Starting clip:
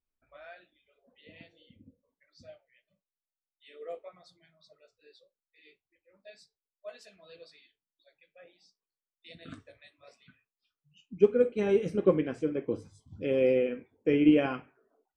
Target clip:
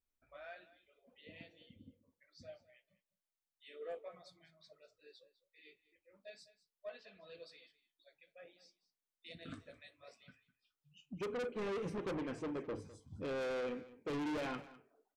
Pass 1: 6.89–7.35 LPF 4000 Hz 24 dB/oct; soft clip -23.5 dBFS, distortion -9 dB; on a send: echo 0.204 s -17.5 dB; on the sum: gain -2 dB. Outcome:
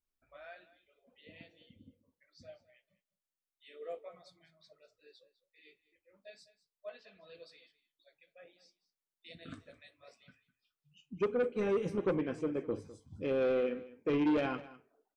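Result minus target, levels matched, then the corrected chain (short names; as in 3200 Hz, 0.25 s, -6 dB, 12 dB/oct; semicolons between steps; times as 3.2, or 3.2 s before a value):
soft clip: distortion -6 dB
6.89–7.35 LPF 4000 Hz 24 dB/oct; soft clip -35 dBFS, distortion -2 dB; on a send: echo 0.204 s -17.5 dB; on the sum: gain -2 dB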